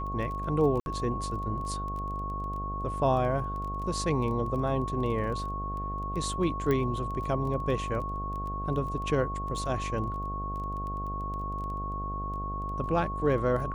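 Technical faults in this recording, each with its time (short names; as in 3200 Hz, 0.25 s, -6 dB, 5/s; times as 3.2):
buzz 50 Hz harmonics 15 -36 dBFS
crackle 13/s -36 dBFS
tone 1100 Hz -34 dBFS
0.8–0.86 gap 61 ms
6.71 pop -17 dBFS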